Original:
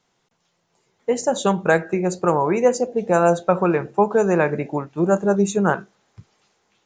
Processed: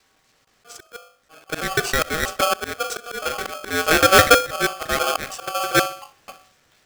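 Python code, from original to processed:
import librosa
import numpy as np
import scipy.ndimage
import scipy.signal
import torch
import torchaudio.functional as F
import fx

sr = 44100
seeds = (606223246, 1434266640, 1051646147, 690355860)

p1 = fx.block_reorder(x, sr, ms=161.0, group=4)
p2 = fx.peak_eq(p1, sr, hz=81.0, db=-10.5, octaves=0.76)
p3 = fx.level_steps(p2, sr, step_db=19)
p4 = p2 + (p3 * librosa.db_to_amplitude(-0.5))
p5 = fx.hum_notches(p4, sr, base_hz=50, count=9)
p6 = fx.auto_swell(p5, sr, attack_ms=606.0)
p7 = p6 + fx.echo_feedback(p6, sr, ms=65, feedback_pct=44, wet_db=-22.5, dry=0)
p8 = p7 * np.sign(np.sin(2.0 * np.pi * 950.0 * np.arange(len(p7)) / sr))
y = p8 * librosa.db_to_amplitude(4.0)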